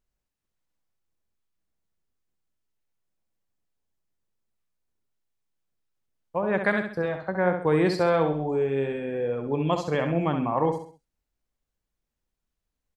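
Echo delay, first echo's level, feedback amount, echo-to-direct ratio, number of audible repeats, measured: 66 ms, -7.0 dB, 38%, -6.5 dB, 4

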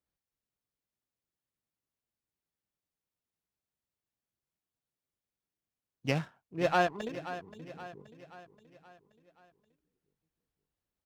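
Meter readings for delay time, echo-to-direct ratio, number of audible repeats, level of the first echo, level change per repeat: 527 ms, -12.0 dB, 4, -13.0 dB, -6.0 dB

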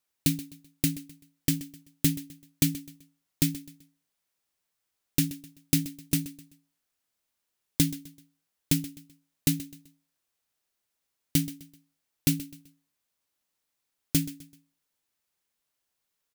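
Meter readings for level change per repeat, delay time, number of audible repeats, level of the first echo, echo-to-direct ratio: -9.0 dB, 128 ms, 3, -16.5 dB, -16.0 dB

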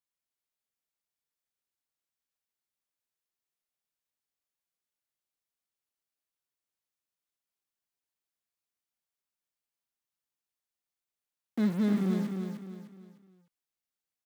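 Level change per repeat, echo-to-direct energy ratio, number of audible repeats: -8.5 dB, -5.0 dB, 4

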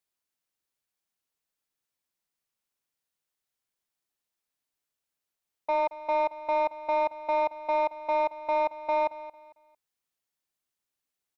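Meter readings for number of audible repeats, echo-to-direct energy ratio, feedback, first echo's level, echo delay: 2, -15.5 dB, 30%, -16.0 dB, 225 ms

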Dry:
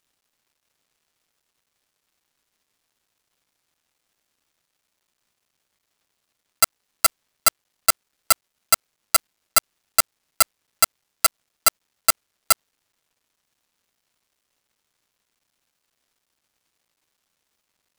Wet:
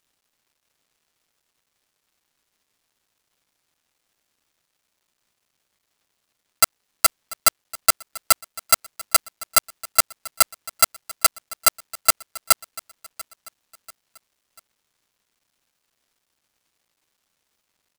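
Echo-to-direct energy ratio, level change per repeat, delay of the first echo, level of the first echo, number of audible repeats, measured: -18.5 dB, -7.5 dB, 690 ms, -19.5 dB, 3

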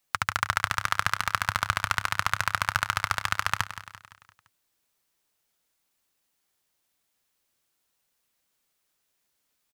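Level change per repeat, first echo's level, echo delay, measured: -6.0 dB, -13.0 dB, 171 ms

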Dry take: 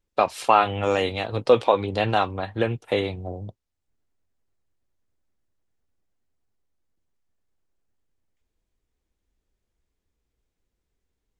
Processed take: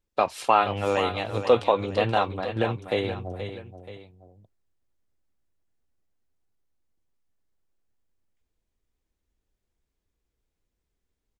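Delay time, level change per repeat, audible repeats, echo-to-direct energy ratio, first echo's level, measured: 478 ms, -7.5 dB, 2, -9.5 dB, -10.0 dB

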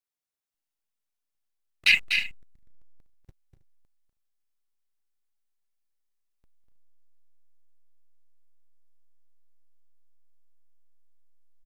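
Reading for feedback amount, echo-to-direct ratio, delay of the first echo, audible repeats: no regular repeats, -6.0 dB, 245 ms, 3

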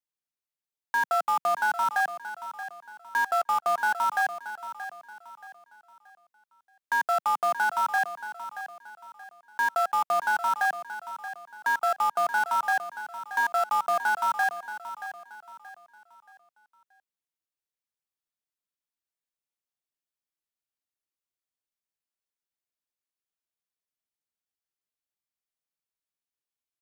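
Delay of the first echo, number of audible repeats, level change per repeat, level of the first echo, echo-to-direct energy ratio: 628 ms, 3, -9.0 dB, -12.0 dB, -11.5 dB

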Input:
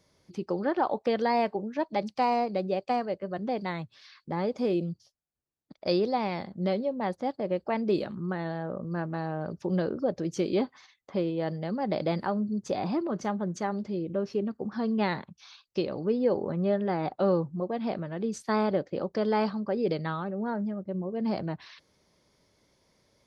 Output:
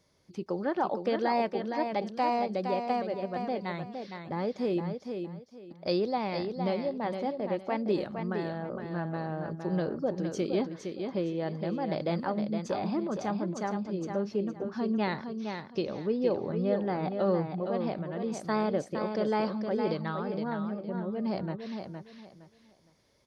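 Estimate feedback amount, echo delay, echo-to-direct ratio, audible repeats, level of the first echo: 25%, 463 ms, -6.0 dB, 3, -6.5 dB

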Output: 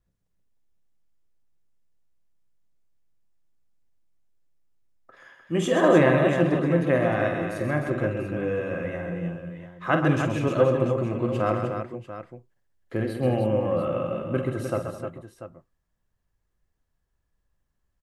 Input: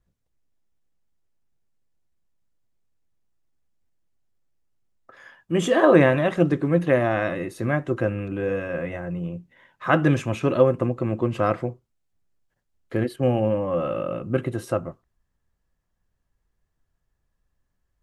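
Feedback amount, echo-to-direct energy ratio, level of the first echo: no regular repeats, -2.0 dB, -9.0 dB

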